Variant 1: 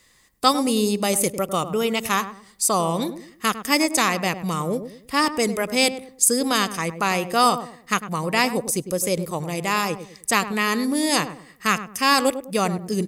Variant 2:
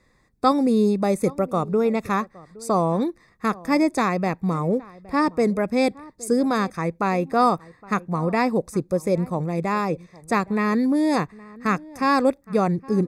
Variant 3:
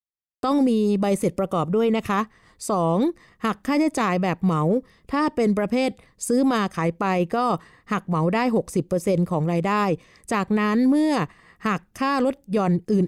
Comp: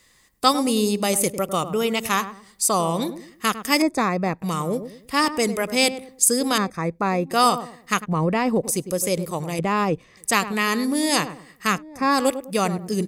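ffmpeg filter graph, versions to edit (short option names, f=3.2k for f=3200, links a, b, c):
-filter_complex "[1:a]asplit=3[a][b][c];[2:a]asplit=2[d][e];[0:a]asplit=6[f][g][h][i][j][k];[f]atrim=end=3.822[l];[a]atrim=start=3.818:end=4.422[m];[g]atrim=start=4.418:end=6.582[n];[b]atrim=start=6.578:end=7.312[o];[h]atrim=start=7.308:end=8.06[p];[d]atrim=start=8.04:end=8.65[q];[i]atrim=start=8.63:end=9.592[r];[e]atrim=start=9.588:end=10.172[s];[j]atrim=start=10.168:end=11.83[t];[c]atrim=start=11.67:end=12.26[u];[k]atrim=start=12.1[v];[l][m]acrossfade=d=0.004:c1=hsin:c2=hsin[w];[w][n]acrossfade=d=0.004:c1=hsin:c2=hsin[x];[x][o]acrossfade=d=0.004:c1=hsin:c2=hsin[y];[y][p]acrossfade=d=0.004:c1=hsin:c2=hsin[z];[z][q]acrossfade=d=0.02:c1=tri:c2=tri[aa];[aa][r]acrossfade=d=0.02:c1=tri:c2=tri[ab];[ab][s]acrossfade=d=0.004:c1=hsin:c2=hsin[ac];[ac][t]acrossfade=d=0.004:c1=hsin:c2=hsin[ad];[ad][u]acrossfade=d=0.16:c1=tri:c2=tri[ae];[ae][v]acrossfade=d=0.16:c1=tri:c2=tri"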